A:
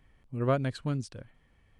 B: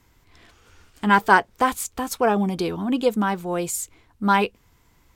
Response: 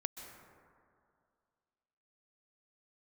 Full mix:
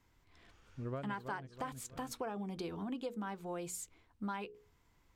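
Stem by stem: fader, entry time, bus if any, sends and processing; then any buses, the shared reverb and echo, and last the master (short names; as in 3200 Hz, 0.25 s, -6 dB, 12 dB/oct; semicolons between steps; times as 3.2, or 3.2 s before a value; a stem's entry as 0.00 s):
-3.0 dB, 0.45 s, no send, echo send -10 dB, high shelf 5500 Hz -7.5 dB; auto duck -9 dB, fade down 1.75 s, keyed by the second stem
-11.0 dB, 0.00 s, no send, no echo send, notches 60/120/180/240/300/360/420/480 Hz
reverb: off
echo: feedback echo 0.325 s, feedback 28%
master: high shelf 8300 Hz -8 dB; compressor 10:1, threshold -37 dBFS, peak gain reduction 17 dB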